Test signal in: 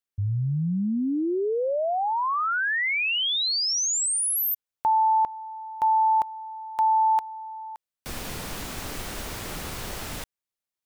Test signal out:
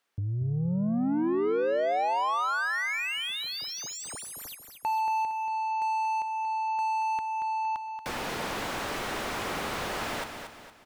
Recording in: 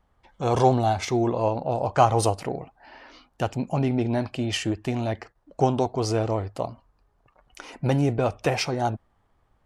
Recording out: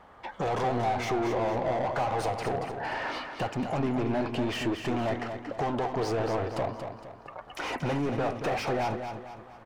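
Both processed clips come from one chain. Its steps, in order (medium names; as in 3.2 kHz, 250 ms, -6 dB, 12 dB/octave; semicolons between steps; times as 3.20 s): compression 2.5:1, threshold -39 dBFS; overdrive pedal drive 29 dB, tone 1.3 kHz, clips at -20.5 dBFS; feedback delay 231 ms, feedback 41%, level -7.5 dB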